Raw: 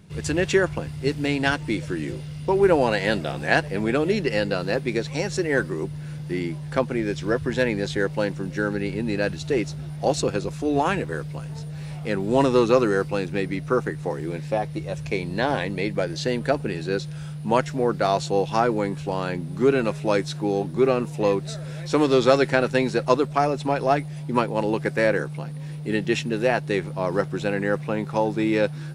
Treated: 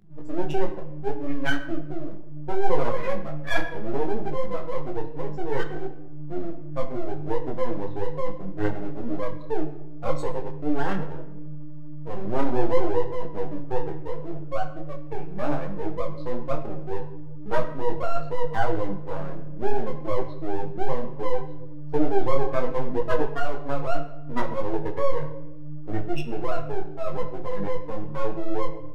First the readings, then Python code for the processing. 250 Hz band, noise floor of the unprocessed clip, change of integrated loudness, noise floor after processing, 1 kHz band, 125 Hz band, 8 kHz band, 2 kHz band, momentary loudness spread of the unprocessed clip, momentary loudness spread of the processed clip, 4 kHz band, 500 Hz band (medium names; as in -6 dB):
-7.0 dB, -34 dBFS, -6.5 dB, -30 dBFS, -4.5 dB, -6.5 dB, under -15 dB, -9.5 dB, 9 LU, 10 LU, -12.0 dB, -6.0 dB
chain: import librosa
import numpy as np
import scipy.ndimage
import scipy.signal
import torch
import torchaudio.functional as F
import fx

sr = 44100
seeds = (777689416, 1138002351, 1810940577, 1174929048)

y = fx.spec_expand(x, sr, power=3.3)
y = scipy.signal.sosfilt(scipy.signal.butter(2, 160.0, 'highpass', fs=sr, output='sos'), y)
y = np.maximum(y, 0.0)
y = fx.room_shoebox(y, sr, seeds[0], volume_m3=270.0, walls='mixed', distance_m=0.53)
y = fx.detune_double(y, sr, cents=24)
y = F.gain(torch.from_numpy(y), 2.5).numpy()